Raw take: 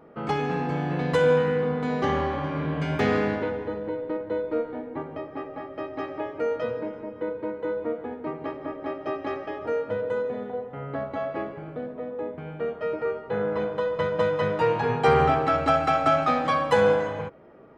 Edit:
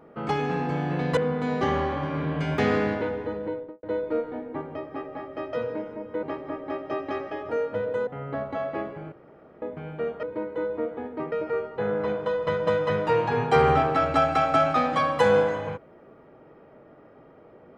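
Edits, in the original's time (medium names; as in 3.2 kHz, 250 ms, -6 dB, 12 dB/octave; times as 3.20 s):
1.17–1.58 s: delete
3.88–4.24 s: studio fade out
5.94–6.60 s: delete
7.30–8.39 s: move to 12.84 s
10.23–10.68 s: delete
11.73–12.23 s: room tone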